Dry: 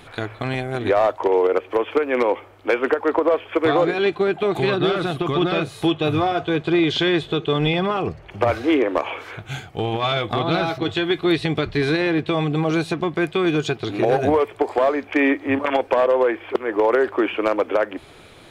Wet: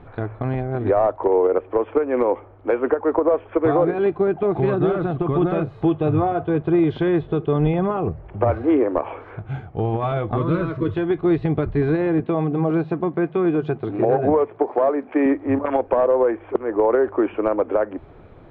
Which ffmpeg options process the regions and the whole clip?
-filter_complex "[0:a]asettb=1/sr,asplit=3[a][b][c];[a]atrim=end=10.374[d];[b]atrim=start=10.37:end=10.96,asetpts=PTS-STARTPTS,afade=t=in:d=0.004:c=qsin,afade=t=out:st=0.586:d=0.004:c=qsin,aeval=exprs='val(0)+0.5*0.0168*sgn(val(0))':c=same,asuperstop=centerf=750:order=8:qfactor=2.7[e];[c]atrim=start=10.956[f];[d][e]acrossfade=d=0.004:c1=hsin:c2=qsin[g];[g][f]acrossfade=d=0.004:c1=qsin:c2=hsin,asettb=1/sr,asplit=3[h][i][j];[h]atrim=end=12.204[k];[i]atrim=start=12.2:end=15.26,asetpts=PTS-STARTPTS,afade=t=in:d=0.004:c=qsin,afade=t=out:st=3.056:d=0.004:c=qsin,highpass=120,lowpass=5.3k,bandreject=f=50:t=h:w=6,bandreject=f=100:t=h:w=6,bandreject=f=150:t=h:w=6,bandreject=f=200:t=h:w=6,bandreject=f=250:t=h:w=6[l];[j]atrim=start=15.256[m];[k][l]acrossfade=d=0.004:c1=hsin:c2=qsin[n];[n][m]acrossfade=d=0.004:c1=qsin:c2=hsin,lowpass=1.1k,lowshelf=f=110:g=9"

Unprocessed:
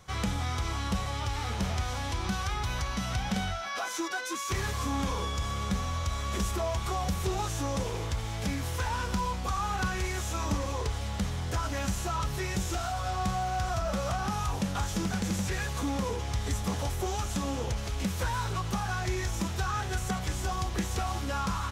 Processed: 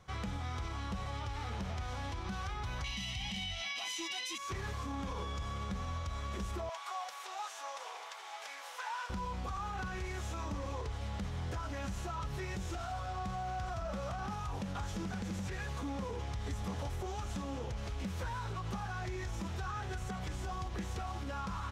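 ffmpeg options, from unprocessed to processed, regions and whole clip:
-filter_complex "[0:a]asettb=1/sr,asplit=3[a][b][c];[a]atrim=end=2.844[d];[b]atrim=start=2.84:end=4.38,asetpts=PTS-STARTPTS,afade=t=in:d=0.004:c=qsin,afade=t=out:st=1.536:d=0.004:c=qsin,highshelf=f=1.9k:t=q:w=3:g=10.5,aecho=1:1:1:0.54,atrim=end_sample=67914[e];[c]atrim=start=4.376[f];[d][e]acrossfade=d=0.004:c1=hsin:c2=qsin[g];[g][f]acrossfade=d=0.004:c1=qsin:c2=hsin,asettb=1/sr,asplit=3[h][i][j];[h]atrim=end=6.694[k];[i]atrim=start=6.69:end=9.1,asetpts=PTS-STARTPTS,afade=t=in:d=0.004:c=qsin,afade=t=out:st=2.406:d=0.004:c=qsin,highpass=f=720:w=0.5412,highpass=f=720:w=1.3066,aecho=1:1:941:0.251,atrim=end_sample=106281[l];[j]atrim=start=9.096[m];[k][l]acrossfade=d=0.004:c1=hsin:c2=qsin[n];[n][m]acrossfade=d=0.004:c1=qsin:c2=hsin,lowpass=f=3.3k:p=1,alimiter=level_in=2.5dB:limit=-24dB:level=0:latency=1:release=68,volume=-2.5dB,volume=-4.5dB"

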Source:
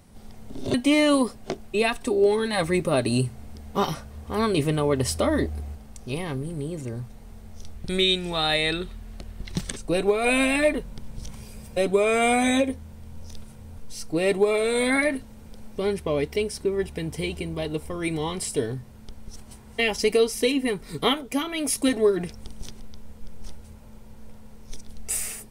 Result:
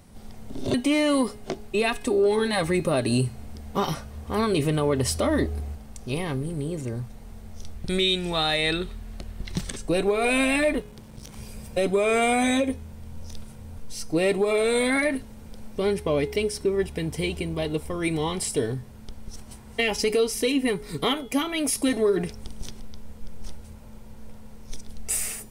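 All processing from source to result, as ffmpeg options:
-filter_complex "[0:a]asettb=1/sr,asplit=3[a][b][c];[a]atrim=end=10.804[d];[b]atrim=start=10.8:end=11.36,asetpts=PTS-STARTPTS,afade=t=in:d=0.004:c=qsin,afade=t=out:st=0.556:d=0.004:c=qsin,highpass=f=110:p=1,aeval=exprs='clip(val(0),-1,0.00447)':c=same[e];[c]atrim=start=11.356[f];[d][e]acrossfade=d=0.004:c1=hsin:c2=qsin[g];[g][f]acrossfade=d=0.004:c1=qsin:c2=hsin,bandreject=f=419:t=h:w=4,bandreject=f=838:t=h:w=4,bandreject=f=1.257k:t=h:w=4,bandreject=f=1.676k:t=h:w=4,bandreject=f=2.095k:t=h:w=4,bandreject=f=2.514k:t=h:w=4,bandreject=f=2.933k:t=h:w=4,bandreject=f=3.352k:t=h:w=4,bandreject=f=3.771k:t=h:w=4,bandreject=f=4.19k:t=h:w=4,bandreject=f=4.609k:t=h:w=4,bandreject=f=5.028k:t=h:w=4,bandreject=f=5.447k:t=h:w=4,bandreject=f=5.866k:t=h:w=4,bandreject=f=6.285k:t=h:w=4,bandreject=f=6.704k:t=h:w=4,bandreject=f=7.123k:t=h:w=4,bandreject=f=7.542k:t=h:w=4,bandreject=f=7.961k:t=h:w=4,bandreject=f=8.38k:t=h:w=4,bandreject=f=8.799k:t=h:w=4,bandreject=f=9.218k:t=h:w=4,bandreject=f=9.637k:t=h:w=4,bandreject=f=10.056k:t=h:w=4,bandreject=f=10.475k:t=h:w=4,bandreject=f=10.894k:t=h:w=4,bandreject=f=11.313k:t=h:w=4,bandreject=f=11.732k:t=h:w=4,bandreject=f=12.151k:t=h:w=4,bandreject=f=12.57k:t=h:w=4,bandreject=f=12.989k:t=h:w=4,bandreject=f=13.408k:t=h:w=4,bandreject=f=13.827k:t=h:w=4,bandreject=f=14.246k:t=h:w=4,bandreject=f=14.665k:t=h:w=4,bandreject=f=15.084k:t=h:w=4,bandreject=f=15.503k:t=h:w=4,acontrast=87,alimiter=limit=-9dB:level=0:latency=1:release=68,volume=-5.5dB"

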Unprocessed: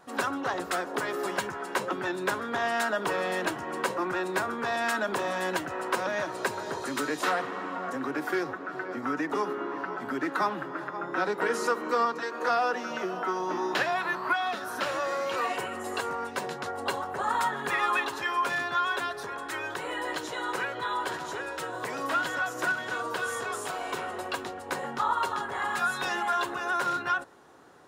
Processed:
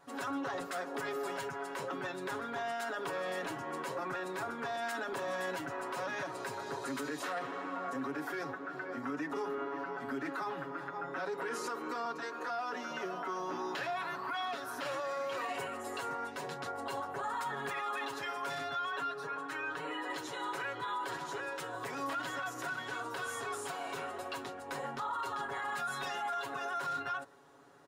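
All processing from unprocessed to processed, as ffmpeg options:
-filter_complex "[0:a]asettb=1/sr,asplit=3[a][b][c];[a]atrim=end=18.914[d];[b]atrim=start=18.91:end=20.1,asetpts=PTS-STARTPTS,afade=t=in:d=0.004:c=qsin,afade=t=out:st=1.186:d=0.004:c=qsin,highpass=f=160:p=1,highshelf=f=4.4k:g=-11,aecho=1:1:6.5:0.75,atrim=end_sample=52479[e];[c]atrim=start=20.096[f];[d][e]acrossfade=d=0.004:c1=hsin:c2=qsin[g];[g][f]acrossfade=d=0.004:c1=qsin:c2=hsin,aecho=1:1:7.2:0.8,alimiter=limit=-22dB:level=0:latency=1:release=18,volume=-7.5dB"

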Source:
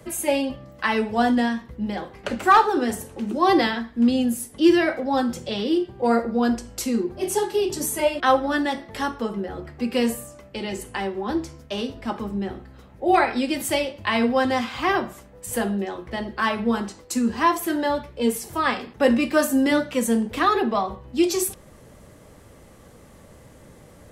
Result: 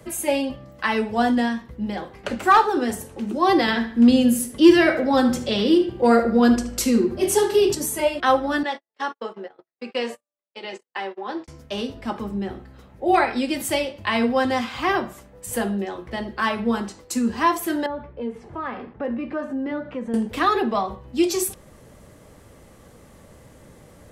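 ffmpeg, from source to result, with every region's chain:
-filter_complex "[0:a]asettb=1/sr,asplit=3[a][b][c];[a]atrim=end=3.684[d];[b]atrim=start=3.68:end=7.75,asetpts=PTS-STARTPTS,afade=t=in:d=0.004:c=qsin,afade=t=out:st=4.066:d=0.004:c=qsin,equalizer=f=800:t=o:w=0.38:g=-4.5,acontrast=24,asplit=2[e][f];[f]adelay=75,lowpass=f=4.1k:p=1,volume=-11dB,asplit=2[g][h];[h]adelay=75,lowpass=f=4.1k:p=1,volume=0.4,asplit=2[i][j];[j]adelay=75,lowpass=f=4.1k:p=1,volume=0.4,asplit=2[k][l];[l]adelay=75,lowpass=f=4.1k:p=1,volume=0.4[m];[e][g][i][k][m]amix=inputs=5:normalize=0,atrim=end_sample=179487[n];[c]atrim=start=7.746[o];[d][n]acrossfade=d=0.004:c1=hsin:c2=qsin[p];[p][o]acrossfade=d=0.004:c1=qsin:c2=hsin,asettb=1/sr,asplit=3[q][r][s];[q]atrim=end=8.634[t];[r]atrim=start=8.63:end=11.48,asetpts=PTS-STARTPTS,afade=t=in:d=0.004:c=qsin,afade=t=out:st=2.846:d=0.004:c=qsin,agate=range=-50dB:threshold=-31dB:ratio=16:release=100:detection=peak,highpass=450,lowpass=4.8k[u];[s]atrim=start=11.476[v];[t][u]acrossfade=d=0.004:c1=hsin:c2=qsin[w];[w][v]acrossfade=d=0.004:c1=qsin:c2=hsin,asettb=1/sr,asplit=3[x][y][z];[x]atrim=end=17.864[aa];[y]atrim=start=17.86:end=20.14,asetpts=PTS-STARTPTS,afade=t=in:d=0.004:c=qsin,afade=t=out:st=2.276:d=0.004:c=qsin,lowpass=1.6k,acompressor=threshold=-30dB:ratio=2:attack=3.2:release=140:knee=1:detection=peak,asoftclip=type=hard:threshold=-18dB[ab];[z]atrim=start=20.136[ac];[aa][ab]acrossfade=d=0.004:c1=hsin:c2=qsin[ad];[ad][ac]acrossfade=d=0.004:c1=qsin:c2=hsin"

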